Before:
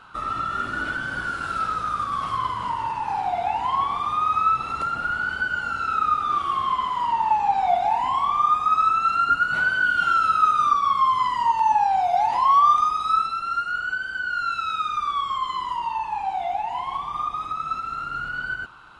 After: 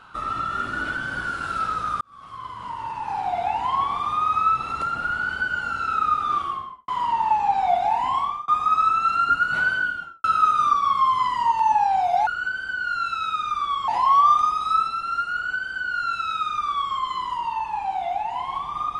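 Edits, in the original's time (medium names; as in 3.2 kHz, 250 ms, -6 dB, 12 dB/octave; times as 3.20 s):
2.01–3.38 s: fade in
6.33–6.88 s: studio fade out
8.18–8.48 s: fade out
9.69–10.24 s: studio fade out
13.73–15.34 s: copy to 12.27 s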